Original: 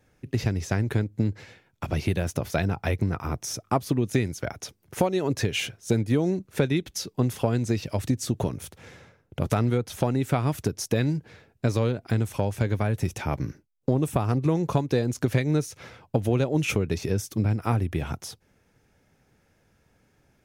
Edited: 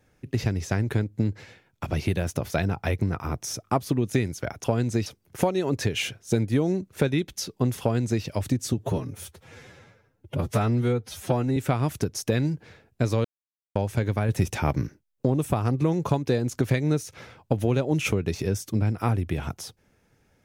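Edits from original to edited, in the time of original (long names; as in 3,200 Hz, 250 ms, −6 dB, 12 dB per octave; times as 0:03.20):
0:07.39–0:07.81: duplicate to 0:04.64
0:08.31–0:10.20: time-stretch 1.5×
0:11.88–0:12.39: silence
0:12.92–0:13.50: clip gain +3.5 dB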